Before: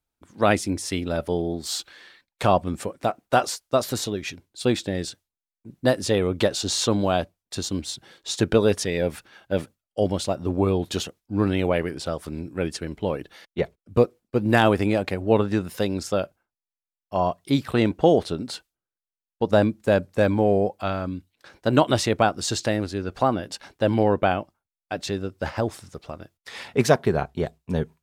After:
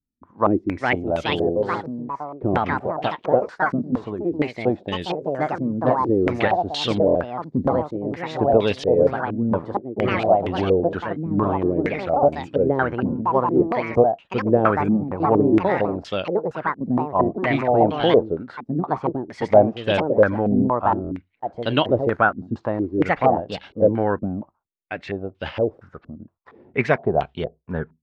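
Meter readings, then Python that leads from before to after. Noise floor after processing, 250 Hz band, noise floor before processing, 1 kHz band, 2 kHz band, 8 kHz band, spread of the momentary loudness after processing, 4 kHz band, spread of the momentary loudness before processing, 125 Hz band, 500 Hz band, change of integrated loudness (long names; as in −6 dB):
−61 dBFS, +3.0 dB, below −85 dBFS, +5.0 dB, +3.5 dB, below −15 dB, 11 LU, −2.0 dB, 12 LU, 0.0 dB, +3.5 dB, +2.5 dB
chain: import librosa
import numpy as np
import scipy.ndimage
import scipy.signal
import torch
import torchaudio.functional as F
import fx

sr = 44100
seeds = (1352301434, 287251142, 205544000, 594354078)

y = fx.echo_pitch(x, sr, ms=479, semitones=3, count=3, db_per_echo=-3.0)
y = fx.buffer_glitch(y, sr, at_s=(7.06, 21.02), block=1024, repeats=3)
y = fx.filter_held_lowpass(y, sr, hz=4.3, low_hz=240.0, high_hz=3100.0)
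y = y * 10.0 ** (-2.5 / 20.0)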